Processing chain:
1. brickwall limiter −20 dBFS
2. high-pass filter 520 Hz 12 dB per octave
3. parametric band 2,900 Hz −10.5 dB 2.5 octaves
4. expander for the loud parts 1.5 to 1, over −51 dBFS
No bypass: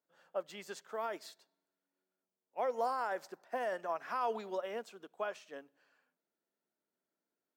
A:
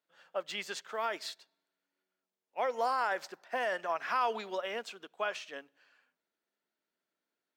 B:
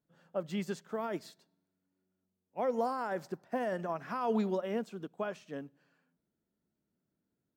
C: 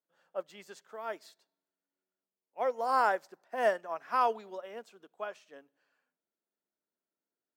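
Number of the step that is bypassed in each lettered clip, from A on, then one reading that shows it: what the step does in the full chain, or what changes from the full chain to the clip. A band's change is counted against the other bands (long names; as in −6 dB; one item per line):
3, 4 kHz band +7.0 dB
2, 250 Hz band +14.5 dB
1, average gain reduction 1.5 dB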